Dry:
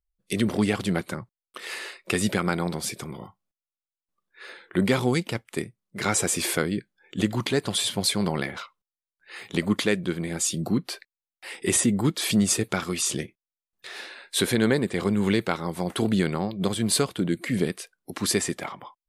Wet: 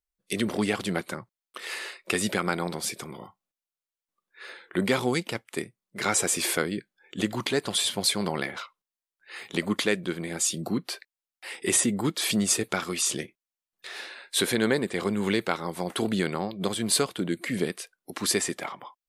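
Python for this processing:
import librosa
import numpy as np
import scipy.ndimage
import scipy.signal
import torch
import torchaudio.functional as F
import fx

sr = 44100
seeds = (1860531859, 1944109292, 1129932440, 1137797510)

y = fx.low_shelf(x, sr, hz=160.0, db=-12.0)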